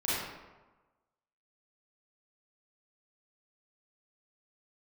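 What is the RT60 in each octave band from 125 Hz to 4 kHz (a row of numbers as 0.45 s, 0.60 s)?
1.1 s, 1.2 s, 1.2 s, 1.2 s, 0.95 s, 0.70 s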